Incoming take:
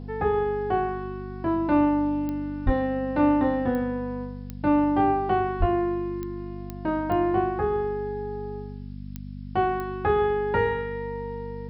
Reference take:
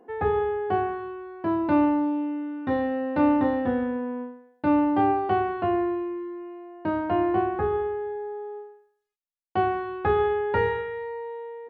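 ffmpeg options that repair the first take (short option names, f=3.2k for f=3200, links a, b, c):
-filter_complex "[0:a]adeclick=t=4,bandreject=f=49.2:t=h:w=4,bandreject=f=98.4:t=h:w=4,bandreject=f=147.6:t=h:w=4,bandreject=f=196.8:t=h:w=4,bandreject=f=246:t=h:w=4,asplit=3[a][b][c];[a]afade=t=out:st=2.65:d=0.02[d];[b]highpass=f=140:w=0.5412,highpass=f=140:w=1.3066,afade=t=in:st=2.65:d=0.02,afade=t=out:st=2.77:d=0.02[e];[c]afade=t=in:st=2.77:d=0.02[f];[d][e][f]amix=inputs=3:normalize=0,asplit=3[g][h][i];[g]afade=t=out:st=5.59:d=0.02[j];[h]highpass=f=140:w=0.5412,highpass=f=140:w=1.3066,afade=t=in:st=5.59:d=0.02,afade=t=out:st=5.71:d=0.02[k];[i]afade=t=in:st=5.71:d=0.02[l];[j][k][l]amix=inputs=3:normalize=0,agate=range=-21dB:threshold=-28dB"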